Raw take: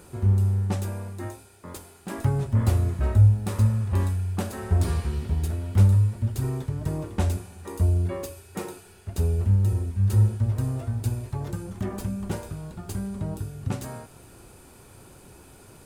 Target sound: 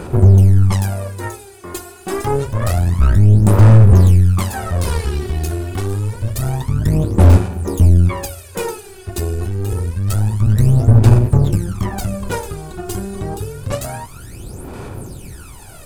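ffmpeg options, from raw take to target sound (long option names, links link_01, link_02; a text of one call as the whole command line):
ffmpeg -i in.wav -af "apsyclip=23.5dB,aphaser=in_gain=1:out_gain=1:delay=2.8:decay=0.77:speed=0.27:type=sinusoidal,aeval=exprs='4.47*(cos(1*acos(clip(val(0)/4.47,-1,1)))-cos(1*PI/2))+0.282*(cos(3*acos(clip(val(0)/4.47,-1,1)))-cos(3*PI/2))+0.631*(cos(4*acos(clip(val(0)/4.47,-1,1)))-cos(4*PI/2))+0.178*(cos(5*acos(clip(val(0)/4.47,-1,1)))-cos(5*PI/2))':channel_layout=same,volume=-15dB" out.wav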